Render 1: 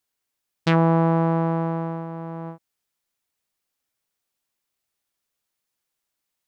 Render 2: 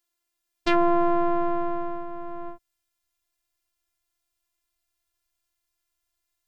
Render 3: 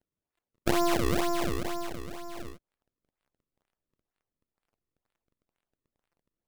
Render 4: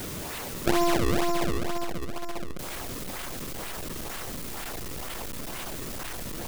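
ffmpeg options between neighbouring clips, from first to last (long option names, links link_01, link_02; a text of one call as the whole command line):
ffmpeg -i in.wav -af "afftfilt=real='hypot(re,im)*cos(PI*b)':imag='0':win_size=512:overlap=0.75,asubboost=boost=6.5:cutoff=120,volume=3.5dB" out.wav
ffmpeg -i in.wav -af "acrusher=samples=33:mix=1:aa=0.000001:lfo=1:lforange=52.8:lforate=2.1,volume=-5dB" out.wav
ffmpeg -i in.wav -af "aeval=exprs='val(0)+0.5*0.0398*sgn(val(0))':channel_layout=same,volume=1dB" out.wav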